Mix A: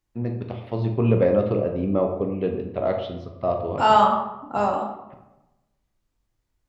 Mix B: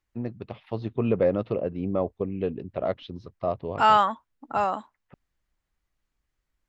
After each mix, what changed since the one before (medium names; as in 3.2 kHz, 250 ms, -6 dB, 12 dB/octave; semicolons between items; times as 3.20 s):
second voice: add peaking EQ 1.8 kHz +8 dB 1.8 oct; reverb: off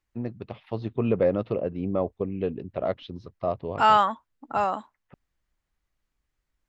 no change